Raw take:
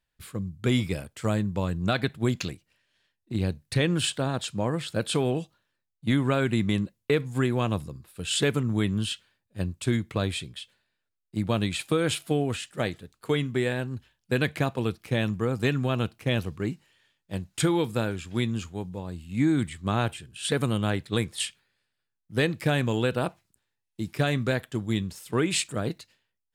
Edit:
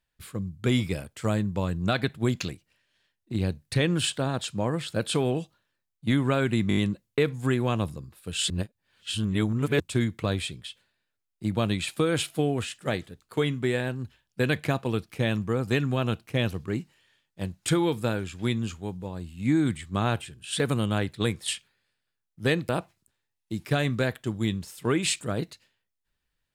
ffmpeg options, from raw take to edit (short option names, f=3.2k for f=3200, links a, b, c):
-filter_complex "[0:a]asplit=8[a][b][c][d][e][f][g][h];[a]atrim=end=6.712[i];[b]atrim=start=6.688:end=6.712[j];[c]atrim=start=6.688:end=6.712[k];[d]atrim=start=6.688:end=6.712[l];[e]atrim=start=6.688:end=8.422[m];[f]atrim=start=8.418:end=9.722,asetpts=PTS-STARTPTS,areverse[n];[g]atrim=start=9.718:end=22.612[o];[h]atrim=start=23.168[p];[i][j]acrossfade=d=0.004:c1=hsin:c2=hsin[q];[q][k]acrossfade=d=0.004:c1=hsin:c2=hsin[r];[r][l]acrossfade=d=0.004:c1=hsin:c2=hsin[s];[s][m]acrossfade=d=0.004:c1=hsin:c2=hsin[t];[t][n]acrossfade=d=0.004:c1=hsin:c2=hsin[u];[u][o]acrossfade=d=0.004:c1=hsin:c2=hsin[v];[v][p]acrossfade=d=0.004:c1=hsin:c2=hsin"